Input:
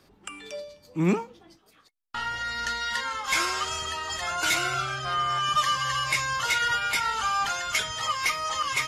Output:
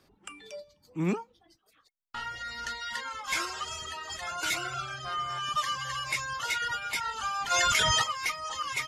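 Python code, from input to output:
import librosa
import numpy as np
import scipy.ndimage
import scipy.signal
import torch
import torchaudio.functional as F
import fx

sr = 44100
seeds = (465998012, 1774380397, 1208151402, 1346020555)

y = fx.dereverb_blind(x, sr, rt60_s=0.72)
y = fx.env_flatten(y, sr, amount_pct=100, at=(7.5, 8.02), fade=0.02)
y = y * librosa.db_to_amplitude(-5.0)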